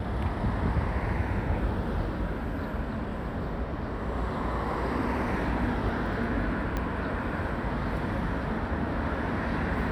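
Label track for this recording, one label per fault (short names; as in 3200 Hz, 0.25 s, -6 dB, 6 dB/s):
6.770000	6.770000	pop -17 dBFS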